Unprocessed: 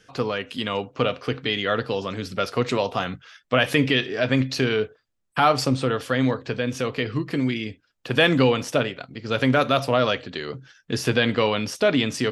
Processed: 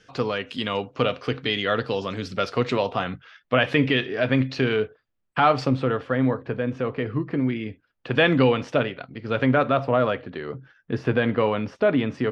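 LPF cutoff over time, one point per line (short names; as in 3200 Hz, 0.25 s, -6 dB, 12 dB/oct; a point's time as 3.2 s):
2.35 s 6400 Hz
3.03 s 3100 Hz
5.62 s 3100 Hz
6.13 s 1600 Hz
7.38 s 1600 Hz
8.12 s 2900 Hz
9.05 s 2900 Hz
9.86 s 1700 Hz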